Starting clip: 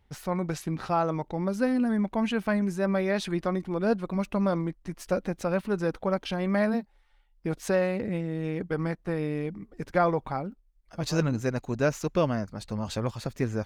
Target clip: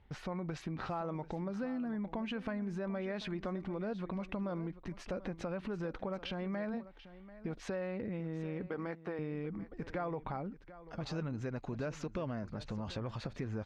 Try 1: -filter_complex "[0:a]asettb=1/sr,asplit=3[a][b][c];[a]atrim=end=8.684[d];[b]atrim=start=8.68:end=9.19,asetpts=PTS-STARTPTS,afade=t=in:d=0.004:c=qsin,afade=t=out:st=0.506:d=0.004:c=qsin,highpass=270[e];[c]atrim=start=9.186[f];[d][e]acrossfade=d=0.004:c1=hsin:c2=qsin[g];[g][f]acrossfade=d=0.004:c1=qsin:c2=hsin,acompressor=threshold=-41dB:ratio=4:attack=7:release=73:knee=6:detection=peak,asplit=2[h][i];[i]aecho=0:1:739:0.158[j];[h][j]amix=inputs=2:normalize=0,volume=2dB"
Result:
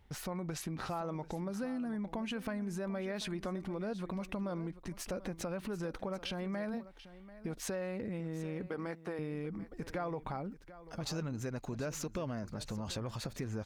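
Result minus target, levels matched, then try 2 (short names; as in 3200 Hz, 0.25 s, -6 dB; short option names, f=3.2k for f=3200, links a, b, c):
4000 Hz band +4.0 dB
-filter_complex "[0:a]asettb=1/sr,asplit=3[a][b][c];[a]atrim=end=8.684[d];[b]atrim=start=8.68:end=9.19,asetpts=PTS-STARTPTS,afade=t=in:d=0.004:c=qsin,afade=t=out:st=0.506:d=0.004:c=qsin,highpass=270[e];[c]atrim=start=9.186[f];[d][e]acrossfade=d=0.004:c1=hsin:c2=qsin[g];[g][f]acrossfade=d=0.004:c1=qsin:c2=hsin,acompressor=threshold=-41dB:ratio=4:attack=7:release=73:knee=6:detection=peak,lowpass=3.4k,asplit=2[h][i];[i]aecho=0:1:739:0.158[j];[h][j]amix=inputs=2:normalize=0,volume=2dB"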